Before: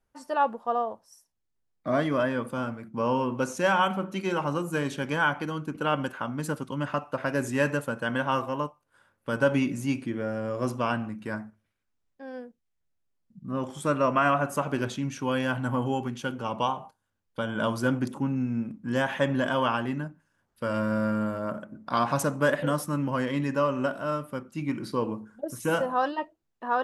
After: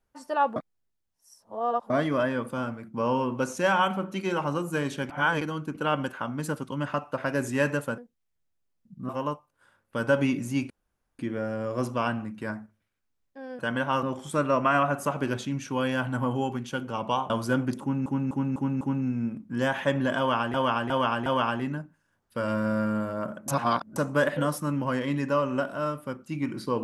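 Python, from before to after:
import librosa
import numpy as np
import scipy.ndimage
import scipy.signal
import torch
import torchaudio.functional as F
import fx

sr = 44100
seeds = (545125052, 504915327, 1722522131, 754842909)

y = fx.edit(x, sr, fx.reverse_span(start_s=0.56, length_s=1.34),
    fx.reverse_span(start_s=5.1, length_s=0.31),
    fx.swap(start_s=7.98, length_s=0.44, other_s=12.43, other_length_s=1.11),
    fx.insert_room_tone(at_s=10.03, length_s=0.49),
    fx.cut(start_s=16.81, length_s=0.83),
    fx.repeat(start_s=18.15, length_s=0.25, count=5),
    fx.repeat(start_s=19.52, length_s=0.36, count=4),
    fx.reverse_span(start_s=21.74, length_s=0.48), tone=tone)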